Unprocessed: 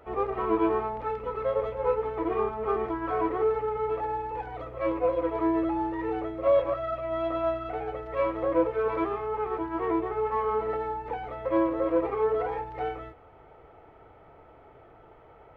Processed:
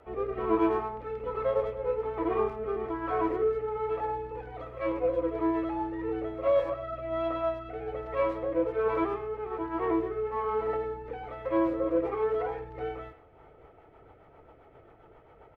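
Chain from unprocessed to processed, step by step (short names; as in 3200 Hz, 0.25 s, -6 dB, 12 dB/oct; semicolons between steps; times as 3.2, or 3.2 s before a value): rotary speaker horn 1.2 Hz, later 7.5 Hz, at 13; speakerphone echo 0.1 s, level -13 dB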